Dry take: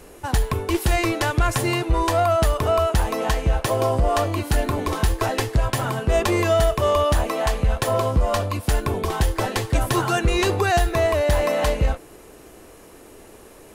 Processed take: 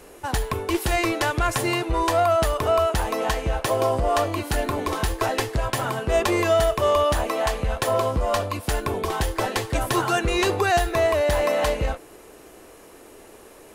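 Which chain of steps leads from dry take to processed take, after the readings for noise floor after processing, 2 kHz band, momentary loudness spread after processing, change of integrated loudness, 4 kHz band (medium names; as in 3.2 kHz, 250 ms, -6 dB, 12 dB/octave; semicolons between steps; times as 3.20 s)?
-47 dBFS, 0.0 dB, 6 LU, -1.5 dB, -0.5 dB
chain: tone controls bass -6 dB, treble -1 dB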